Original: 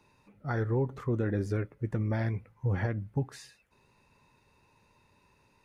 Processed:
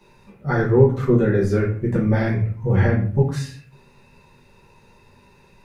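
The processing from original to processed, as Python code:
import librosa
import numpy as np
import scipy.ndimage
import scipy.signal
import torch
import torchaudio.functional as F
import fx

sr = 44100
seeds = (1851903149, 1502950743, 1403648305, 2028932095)

y = fx.room_shoebox(x, sr, seeds[0], volume_m3=40.0, walls='mixed', distance_m=1.2)
y = y * 10.0 ** (5.0 / 20.0)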